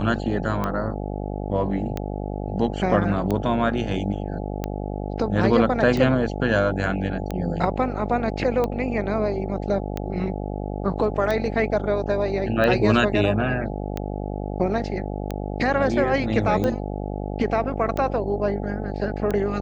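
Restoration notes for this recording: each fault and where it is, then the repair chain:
buzz 50 Hz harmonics 17 -29 dBFS
tick 45 rpm -13 dBFS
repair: de-click; de-hum 50 Hz, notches 17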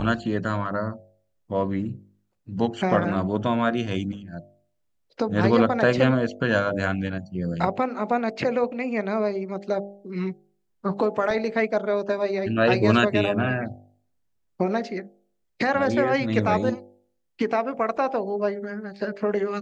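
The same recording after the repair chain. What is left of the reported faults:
none

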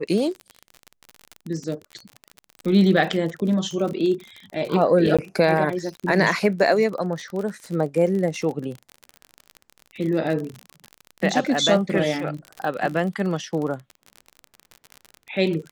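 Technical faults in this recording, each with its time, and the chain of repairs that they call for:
crackle 38/s -28 dBFS
5.17–5.19 gap 16 ms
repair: de-click; interpolate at 5.17, 16 ms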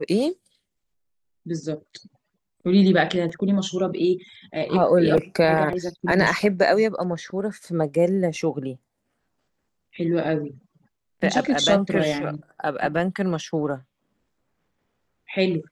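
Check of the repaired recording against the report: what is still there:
none

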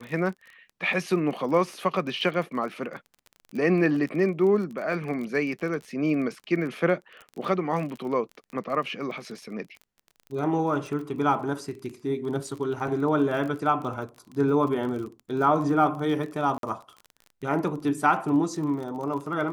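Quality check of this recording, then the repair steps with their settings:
crackle 28/s -34 dBFS
16.58–16.63 gap 52 ms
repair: de-click; interpolate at 16.58, 52 ms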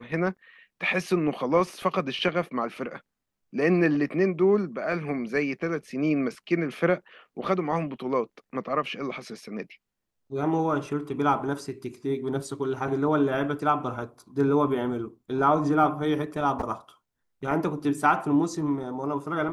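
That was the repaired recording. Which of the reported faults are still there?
none

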